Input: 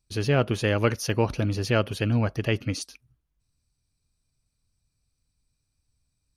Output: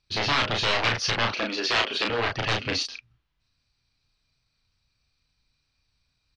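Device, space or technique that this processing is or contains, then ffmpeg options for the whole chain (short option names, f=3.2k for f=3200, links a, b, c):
synthesiser wavefolder: -filter_complex "[0:a]asettb=1/sr,asplit=3[a][b][c];[a]atrim=end=1.294[d];[b]atrim=start=1.29:end=2.1,asetpts=PTS-STARTPTS,afade=t=in:d=0.004:c=qsin,afade=t=out:st=0.806:d=0.004:c=qsin,highpass=f=260:w=0.5412,highpass=f=260:w=1.3066[e];[c]atrim=start=2.096[f];[d][e]acrossfade=d=0.004:c1=hsin:c2=qsin[g];[g][f]acrossfade=d=0.004:c1=qsin:c2=hsin,aeval=exprs='0.0596*(abs(mod(val(0)/0.0596+3,4)-2)-1)':c=same,lowpass=f=4.5k:w=0.5412,lowpass=f=4.5k:w=1.3066,tiltshelf=f=740:g=-7,asplit=2[h][i];[i]adelay=34,volume=-3dB[j];[h][j]amix=inputs=2:normalize=0,volume=4.5dB"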